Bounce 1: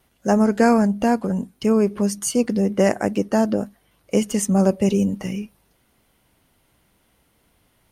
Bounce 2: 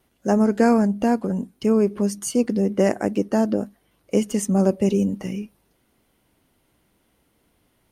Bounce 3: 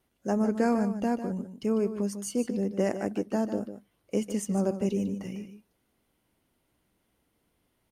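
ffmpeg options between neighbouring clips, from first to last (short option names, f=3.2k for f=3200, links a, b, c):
-af "equalizer=f=320:w=1:g=5,volume=-4dB"
-af "aecho=1:1:149:0.299,volume=-8.5dB"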